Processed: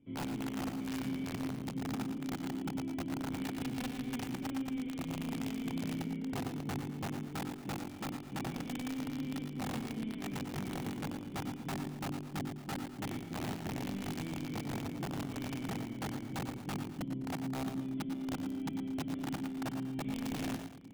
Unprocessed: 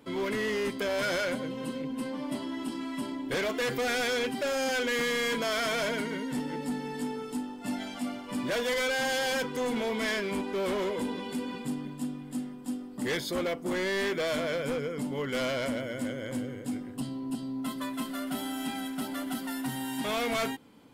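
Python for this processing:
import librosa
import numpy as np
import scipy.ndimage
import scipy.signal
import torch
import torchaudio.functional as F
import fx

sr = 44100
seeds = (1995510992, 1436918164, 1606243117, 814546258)

p1 = fx.spec_clip(x, sr, under_db=19)
p2 = fx.formant_cascade(p1, sr, vowel='i')
p3 = fx.peak_eq(p2, sr, hz=3000.0, db=-12.5, octaves=1.4)
p4 = fx.rider(p3, sr, range_db=10, speed_s=0.5)
p5 = (np.mod(10.0 ** (36.5 / 20.0) * p4 + 1.0, 2.0) - 1.0) / 10.0 ** (36.5 / 20.0)
p6 = fx.peak_eq(p5, sr, hz=130.0, db=10.5, octaves=1.5)
p7 = fx.hum_notches(p6, sr, base_hz=60, count=4)
p8 = p7 + fx.echo_multitap(p7, sr, ms=(96, 114, 204, 231, 588), db=(-11.0, -8.5, -18.5, -17.0, -20.0), dry=0)
y = p8 * 10.0 ** (1.0 / 20.0)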